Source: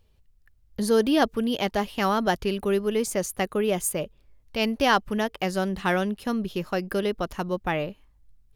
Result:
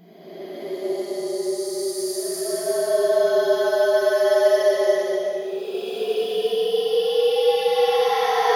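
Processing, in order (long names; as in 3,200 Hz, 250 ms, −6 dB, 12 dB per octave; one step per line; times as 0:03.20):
frequency shifter +170 Hz
extreme stretch with random phases 19×, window 0.10 s, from 0:00.75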